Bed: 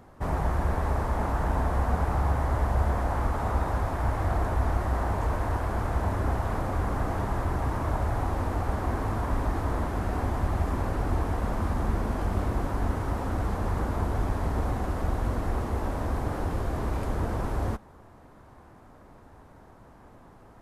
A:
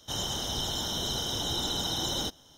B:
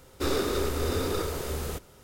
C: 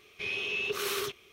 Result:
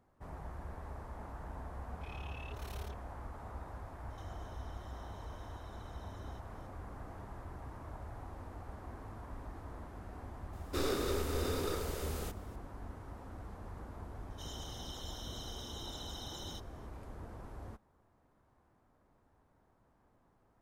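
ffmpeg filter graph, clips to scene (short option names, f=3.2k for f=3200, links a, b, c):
-filter_complex "[1:a]asplit=2[a][b];[0:a]volume=-19dB[c];[3:a]tremolo=f=36:d=0.889[d];[a]acompressor=threshold=-47dB:ratio=10:attack=18:release=346:knee=1:detection=peak[e];[d]atrim=end=1.32,asetpts=PTS-STARTPTS,volume=-16.5dB,afade=t=in:d=0.004:c=hsin,afade=t=out:st=1.316:d=0.004:c=hsin,adelay=1820[f];[e]atrim=end=2.57,asetpts=PTS-STARTPTS,volume=-16dB,afade=t=in:d=0.004:c=hsin,afade=t=out:st=2.566:d=0.004:c=hsin,adelay=4100[g];[2:a]atrim=end=2.03,asetpts=PTS-STARTPTS,volume=-7dB,afade=t=in:d=0.004:c=hsin,afade=t=out:st=2.026:d=0.004:c=hsin,adelay=10530[h];[b]atrim=end=2.57,asetpts=PTS-STARTPTS,volume=-16dB,afade=t=in:d=0.004:c=hsin,afade=t=out:st=2.566:d=0.004:c=hsin,adelay=14300[i];[c][f][g][h][i]amix=inputs=5:normalize=0"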